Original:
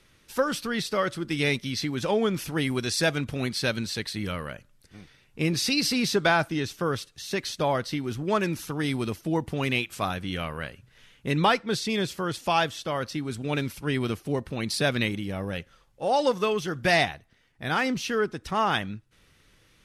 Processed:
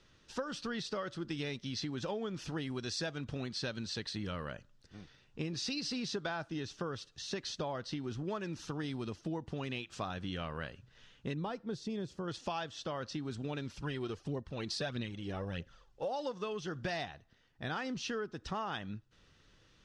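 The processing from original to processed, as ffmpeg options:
ffmpeg -i in.wav -filter_complex "[0:a]asettb=1/sr,asplit=3[link_01][link_02][link_03];[link_01]atrim=end=11.344[link_04];[link_02]atrim=start=11.34:end=12.28,asetpts=PTS-STARTPTS,afade=type=in:duration=0.004:curve=qsin,afade=type=out:start_time=0.936:duration=0.004:curve=qsin,equalizer=frequency=2900:width=0.31:gain=-12[link_05];[link_03]atrim=start=12.276[link_06];[link_04][link_05]acrossfade=duration=0.004:curve1=hsin:curve2=qsin[link_07];[link_07][link_06]acrossfade=duration=0.004:curve1=qsin:curve2=hsin,asplit=3[link_08][link_09][link_10];[link_08]afade=type=out:start_time=13.78:duration=0.02[link_11];[link_09]aphaser=in_gain=1:out_gain=1:delay=3:decay=0.5:speed=1.6:type=triangular,afade=type=in:start_time=13.78:duration=0.02,afade=type=out:start_time=16.08:duration=0.02[link_12];[link_10]afade=type=in:start_time=16.08:duration=0.02[link_13];[link_11][link_12][link_13]amix=inputs=3:normalize=0,lowpass=frequency=6700:width=0.5412,lowpass=frequency=6700:width=1.3066,equalizer=frequency=2200:width=5.7:gain=-8.5,acompressor=threshold=-31dB:ratio=6,volume=-4dB" out.wav

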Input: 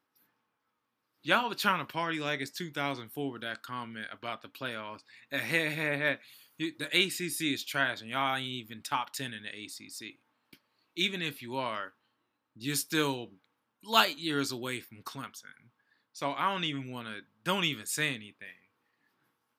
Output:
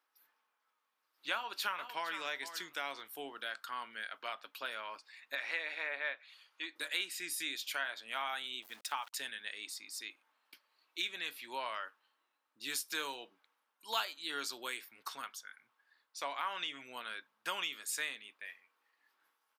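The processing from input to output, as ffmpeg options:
ffmpeg -i in.wav -filter_complex "[0:a]asplit=2[link_01][link_02];[link_02]afade=type=in:start_time=1.32:duration=0.01,afade=type=out:start_time=2.15:duration=0.01,aecho=0:1:460|920:0.199526|0.0299289[link_03];[link_01][link_03]amix=inputs=2:normalize=0,asettb=1/sr,asplit=3[link_04][link_05][link_06];[link_04]atrim=end=5.354[link_07];[link_05]atrim=start=5.35:end=6.76,asetpts=PTS-STARTPTS,afade=type=in:duration=0.004:curve=qsin,afade=type=out:start_time=1.406:duration=0.004:curve=qsin,highpass=390,lowpass=4200[link_08];[link_06]atrim=start=6.756[link_09];[link_07][link_08]acrossfade=duration=0.004:curve1=hsin:curve2=qsin[link_10];[link_10][link_09]acrossfade=duration=0.004:curve1=qsin:curve2=hsin,asettb=1/sr,asplit=3[link_11][link_12][link_13];[link_11]atrim=end=8.624[link_14];[link_12]atrim=start=8.62:end=9.13,asetpts=PTS-STARTPTS,afade=type=in:duration=0.004:curve=qsin,afade=type=out:start_time=0.506:duration=0.004:curve=qsin,aeval=exprs='val(0)*gte(abs(val(0)),0.00299)':channel_layout=same[link_15];[link_13]atrim=start=9.126[link_16];[link_14][link_15]acrossfade=duration=0.004:curve1=hsin:curve2=qsin[link_17];[link_17][link_16]acrossfade=duration=0.004:curve1=qsin:curve2=hsin,highpass=670,acompressor=threshold=-37dB:ratio=2.5" out.wav

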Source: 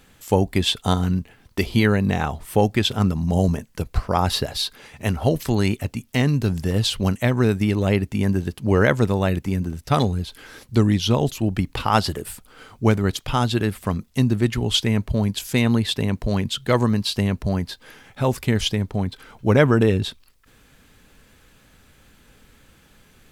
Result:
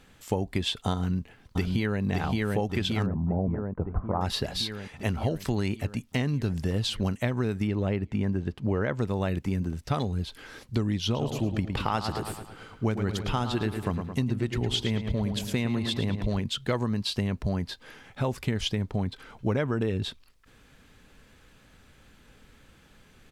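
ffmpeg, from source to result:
ffmpeg -i in.wav -filter_complex "[0:a]asplit=2[link_01][link_02];[link_02]afade=type=in:start_time=0.98:duration=0.01,afade=type=out:start_time=2.02:duration=0.01,aecho=0:1:570|1140|1710|2280|2850|3420|3990|4560|5130|5700|6270:0.749894|0.487431|0.31683|0.20594|0.133861|0.0870095|0.0565562|0.0367615|0.023895|0.0155317|0.0100956[link_03];[link_01][link_03]amix=inputs=2:normalize=0,asettb=1/sr,asplit=3[link_04][link_05][link_06];[link_04]atrim=end=3.064[link_07];[link_05]atrim=start=3.06:end=4.21,asetpts=PTS-STARTPTS,afade=type=in:duration=0.004:curve=qsin,afade=type=out:start_time=1.146:duration=0.004:curve=qsin,lowpass=frequency=1200:width=0.5412,lowpass=frequency=1200:width=1.3066[link_08];[link_06]atrim=start=4.206[link_09];[link_07][link_08]acrossfade=duration=0.004:curve1=hsin:curve2=qsin[link_10];[link_10][link_09]acrossfade=duration=0.004:curve1=qsin:curve2=hsin,asettb=1/sr,asplit=3[link_11][link_12][link_13];[link_11]atrim=end=7.674[link_14];[link_12]atrim=start=7.67:end=8.99,asetpts=PTS-STARTPTS,afade=type=in:duration=0.004:curve=qsin,afade=type=out:start_time=1.316:duration=0.004:curve=qsin,lowpass=frequency=2400:poles=1[link_15];[link_13]atrim=start=8.986[link_16];[link_14][link_15]acrossfade=duration=0.004:curve1=hsin:curve2=qsin[link_17];[link_17][link_16]acrossfade=duration=0.004:curve1=qsin:curve2=hsin,asettb=1/sr,asplit=3[link_18][link_19][link_20];[link_18]atrim=end=11.044[link_21];[link_19]atrim=start=11.04:end=16.4,asetpts=PTS-STARTPTS,afade=type=in:duration=0.004:curve=qsin,afade=type=out:start_time=5.356:duration=0.004:curve=qsin,asplit=2[link_22][link_23];[link_23]adelay=109,lowpass=frequency=4700:poles=1,volume=-9dB,asplit=2[link_24][link_25];[link_25]adelay=109,lowpass=frequency=4700:poles=1,volume=0.54,asplit=2[link_26][link_27];[link_27]adelay=109,lowpass=frequency=4700:poles=1,volume=0.54,asplit=2[link_28][link_29];[link_29]adelay=109,lowpass=frequency=4700:poles=1,volume=0.54,asplit=2[link_30][link_31];[link_31]adelay=109,lowpass=frequency=4700:poles=1,volume=0.54,asplit=2[link_32][link_33];[link_33]adelay=109,lowpass=frequency=4700:poles=1,volume=0.54[link_34];[link_22][link_24][link_26][link_28][link_30][link_32][link_34]amix=inputs=7:normalize=0,atrim=end_sample=236376[link_35];[link_20]atrim=start=16.396[link_36];[link_21][link_35]acrossfade=duration=0.004:curve1=hsin:curve2=qsin[link_37];[link_37][link_36]acrossfade=duration=0.004:curve1=qsin:curve2=hsin,acompressor=threshold=-21dB:ratio=6,highshelf=frequency=10000:gain=-11.5,volume=-2.5dB" out.wav

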